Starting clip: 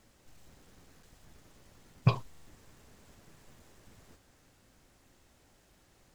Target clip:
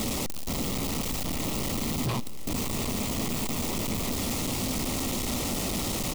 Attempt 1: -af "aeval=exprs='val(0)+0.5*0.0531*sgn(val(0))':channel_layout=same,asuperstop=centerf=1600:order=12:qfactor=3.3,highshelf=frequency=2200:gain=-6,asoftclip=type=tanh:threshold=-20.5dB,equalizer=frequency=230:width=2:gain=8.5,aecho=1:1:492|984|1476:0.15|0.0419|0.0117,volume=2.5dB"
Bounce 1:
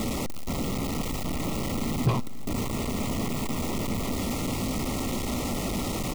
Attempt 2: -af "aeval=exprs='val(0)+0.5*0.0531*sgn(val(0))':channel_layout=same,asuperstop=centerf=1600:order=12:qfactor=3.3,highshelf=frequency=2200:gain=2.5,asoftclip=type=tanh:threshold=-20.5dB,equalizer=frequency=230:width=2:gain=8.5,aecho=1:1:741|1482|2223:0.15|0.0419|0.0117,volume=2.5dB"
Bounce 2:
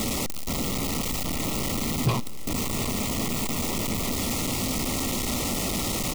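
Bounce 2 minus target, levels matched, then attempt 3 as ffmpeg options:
soft clipping: distortion −5 dB
-af "aeval=exprs='val(0)+0.5*0.0531*sgn(val(0))':channel_layout=same,asuperstop=centerf=1600:order=12:qfactor=3.3,highshelf=frequency=2200:gain=2.5,asoftclip=type=tanh:threshold=-29.5dB,equalizer=frequency=230:width=2:gain=8.5,aecho=1:1:741|1482|2223:0.15|0.0419|0.0117,volume=2.5dB"

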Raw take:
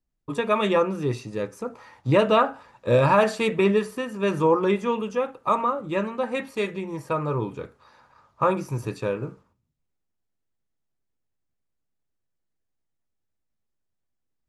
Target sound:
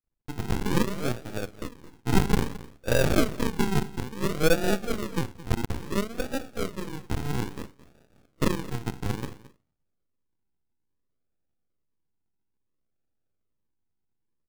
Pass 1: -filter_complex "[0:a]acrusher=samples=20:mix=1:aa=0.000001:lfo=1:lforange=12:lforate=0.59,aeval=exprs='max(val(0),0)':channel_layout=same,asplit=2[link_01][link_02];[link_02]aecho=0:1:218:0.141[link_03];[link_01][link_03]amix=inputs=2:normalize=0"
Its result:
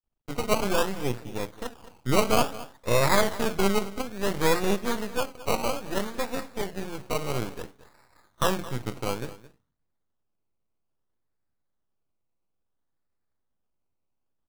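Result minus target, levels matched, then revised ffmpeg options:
sample-and-hold swept by an LFO: distortion −19 dB
-filter_complex "[0:a]acrusher=samples=59:mix=1:aa=0.000001:lfo=1:lforange=35.4:lforate=0.59,aeval=exprs='max(val(0),0)':channel_layout=same,asplit=2[link_01][link_02];[link_02]aecho=0:1:218:0.141[link_03];[link_01][link_03]amix=inputs=2:normalize=0"

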